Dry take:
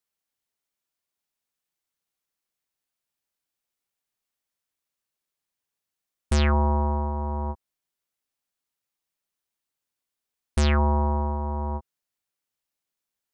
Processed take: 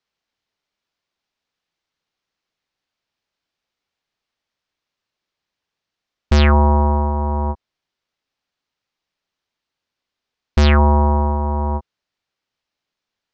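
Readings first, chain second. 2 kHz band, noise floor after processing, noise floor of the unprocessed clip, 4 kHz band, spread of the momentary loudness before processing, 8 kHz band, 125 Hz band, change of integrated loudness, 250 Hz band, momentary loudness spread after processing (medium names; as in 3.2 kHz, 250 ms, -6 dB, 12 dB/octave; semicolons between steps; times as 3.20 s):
+8.5 dB, -84 dBFS, under -85 dBFS, +8.0 dB, 11 LU, -0.5 dB, +8.5 dB, +8.5 dB, +8.5 dB, 11 LU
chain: low-pass 5.3 kHz 24 dB/octave; trim +8.5 dB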